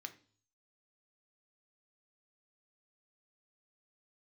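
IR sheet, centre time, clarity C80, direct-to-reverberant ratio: 6 ms, 20.0 dB, 6.5 dB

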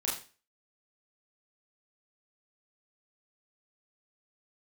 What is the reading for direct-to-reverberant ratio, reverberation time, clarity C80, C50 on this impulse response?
-6.0 dB, 0.35 s, 10.5 dB, 6.5 dB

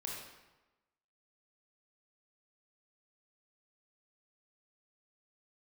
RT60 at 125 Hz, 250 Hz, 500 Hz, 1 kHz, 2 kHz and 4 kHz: 1.0, 1.1, 1.1, 1.1, 0.95, 0.80 s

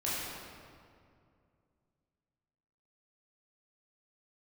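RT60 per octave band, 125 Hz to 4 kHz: 3.1, 2.8, 2.5, 2.2, 1.8, 1.4 s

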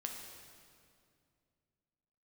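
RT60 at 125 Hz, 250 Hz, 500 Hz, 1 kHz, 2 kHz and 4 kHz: 3.1, 2.9, 2.5, 2.2, 2.0, 1.9 s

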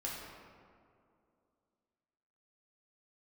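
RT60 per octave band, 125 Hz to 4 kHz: 2.4, 2.9, 2.7, 2.3, 1.6, 1.1 s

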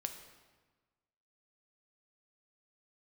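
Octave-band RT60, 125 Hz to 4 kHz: 1.5, 1.5, 1.3, 1.3, 1.2, 1.0 s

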